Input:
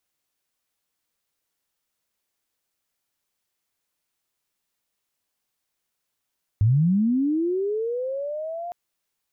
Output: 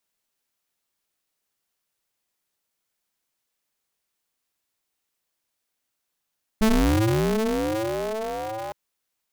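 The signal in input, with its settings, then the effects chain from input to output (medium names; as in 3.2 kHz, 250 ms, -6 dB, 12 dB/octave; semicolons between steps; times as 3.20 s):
sweep linear 97 Hz -> 710 Hz -14.5 dBFS -> -29.5 dBFS 2.11 s
high-pass 52 Hz 12 dB/octave; polarity switched at an audio rate 110 Hz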